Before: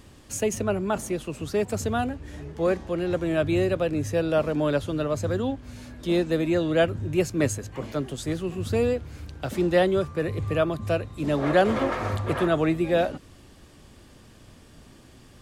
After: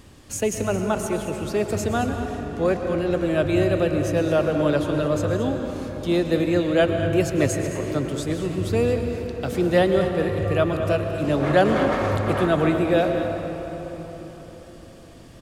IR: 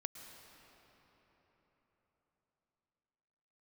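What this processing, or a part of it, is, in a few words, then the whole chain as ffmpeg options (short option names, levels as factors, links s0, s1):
cave: -filter_complex "[0:a]aecho=1:1:221:0.224[s0];[1:a]atrim=start_sample=2205[s1];[s0][s1]afir=irnorm=-1:irlink=0,volume=1.88"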